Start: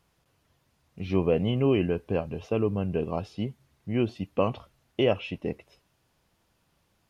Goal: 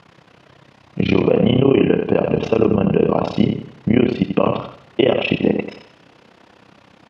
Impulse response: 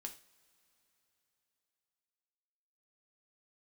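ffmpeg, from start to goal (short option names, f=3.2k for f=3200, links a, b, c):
-filter_complex "[0:a]acompressor=threshold=-33dB:ratio=6,tremolo=f=32:d=0.974,highpass=150,lowpass=3.5k,aecho=1:1:88|176|264|352:0.447|0.138|0.0429|0.0133,asplit=2[a][b];[1:a]atrim=start_sample=2205[c];[b][c]afir=irnorm=-1:irlink=0,volume=-6.5dB[d];[a][d]amix=inputs=2:normalize=0,alimiter=level_in=26dB:limit=-1dB:release=50:level=0:latency=1,volume=-1dB"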